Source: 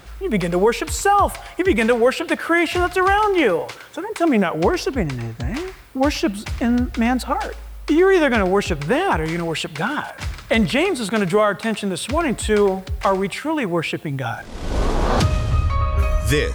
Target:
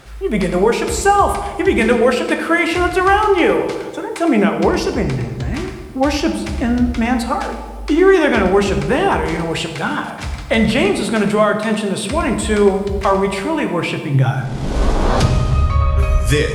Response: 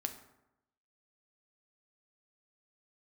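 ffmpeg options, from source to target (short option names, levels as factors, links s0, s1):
-filter_complex "[0:a]asettb=1/sr,asplit=3[s0][s1][s2];[s0]atrim=end=14.144[s3];[s1]atrim=start=14.14:end=14.72,asetpts=PTS-STARTPTS,afade=t=in:d=0.004:c=qsin,afade=t=out:st=0.576:d=0.004:c=qsin,equalizer=f=170:w=0.82:g=8.5[s4];[s2]atrim=start=14.716[s5];[s3][s4]acrossfade=d=0.004:c1=hsin:c2=qsin[s6];[s6][s5]acrossfade=d=0.004:c1=qsin:c2=hsin[s7];[1:a]atrim=start_sample=2205,asetrate=22491,aresample=44100[s8];[s7][s8]afir=irnorm=-1:irlink=0,volume=0.891"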